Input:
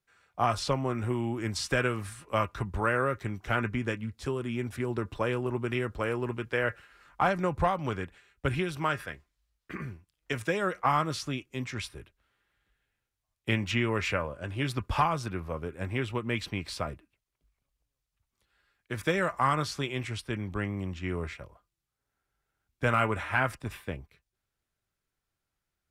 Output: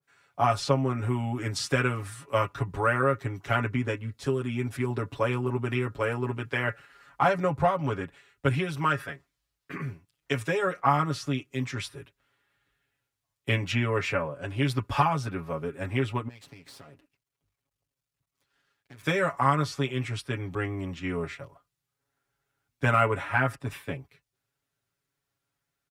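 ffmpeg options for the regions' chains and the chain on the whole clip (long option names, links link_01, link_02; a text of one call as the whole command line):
ffmpeg -i in.wav -filter_complex "[0:a]asettb=1/sr,asplit=3[link_01][link_02][link_03];[link_01]atrim=end=16.284[link_04];[link_02]atrim=start=16.28:end=19.03,asetpts=PTS-STARTPTS,afade=type=in:duration=0.004:curve=qsin,afade=type=out:start_time=2.746:duration=0.004:curve=qsin,acompressor=threshold=-43dB:ratio=10:attack=3.2:release=140:knee=1:detection=peak,aeval=exprs='max(val(0),0)':channel_layout=same[link_05];[link_03]atrim=start=19.026[link_06];[link_04][link_05]acrossfade=duration=0.004:curve1=hsin:curve2=qsin[link_07];[link_07][link_06]acrossfade=duration=0.004:curve1=qsin:curve2=hsin,highpass=68,aecho=1:1:7.2:0.96,adynamicequalizer=threshold=0.0112:dfrequency=1800:dqfactor=0.7:tfrequency=1800:tqfactor=0.7:attack=5:release=100:ratio=0.375:range=3:mode=cutabove:tftype=highshelf" out.wav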